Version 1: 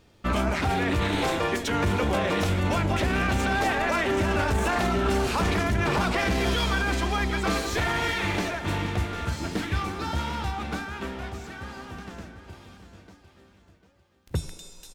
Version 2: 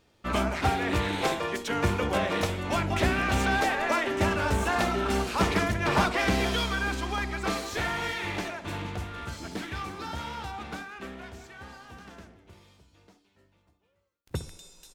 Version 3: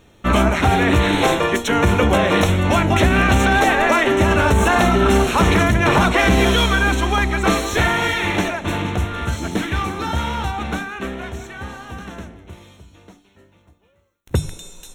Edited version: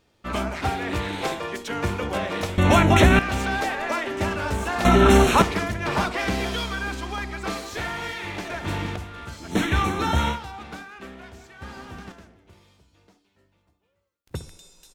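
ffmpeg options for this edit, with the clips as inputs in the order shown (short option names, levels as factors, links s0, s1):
-filter_complex "[2:a]asplit=3[s0][s1][s2];[0:a]asplit=2[s3][s4];[1:a]asplit=6[s5][s6][s7][s8][s9][s10];[s5]atrim=end=2.582[s11];[s0]atrim=start=2.578:end=3.192[s12];[s6]atrim=start=3.188:end=4.852[s13];[s1]atrim=start=4.848:end=5.422[s14];[s7]atrim=start=5.418:end=8.502[s15];[s3]atrim=start=8.498:end=8.962[s16];[s8]atrim=start=8.958:end=9.58[s17];[s2]atrim=start=9.48:end=10.39[s18];[s9]atrim=start=10.29:end=11.622[s19];[s4]atrim=start=11.618:end=12.122[s20];[s10]atrim=start=12.118[s21];[s11][s12]acrossfade=d=0.004:c1=hsin:c2=hsin[s22];[s22][s13]acrossfade=d=0.004:c1=hsin:c2=hsin[s23];[s23][s14]acrossfade=d=0.004:c1=hsin:c2=hsin[s24];[s24][s15]acrossfade=d=0.004:c1=hsin:c2=hsin[s25];[s25][s16]acrossfade=d=0.004:c1=hsin:c2=hsin[s26];[s26][s17]acrossfade=d=0.004:c1=hsin:c2=hsin[s27];[s27][s18]acrossfade=d=0.1:c1=tri:c2=tri[s28];[s28][s19]acrossfade=d=0.1:c1=tri:c2=tri[s29];[s29][s20]acrossfade=d=0.004:c1=hsin:c2=hsin[s30];[s30][s21]acrossfade=d=0.004:c1=hsin:c2=hsin"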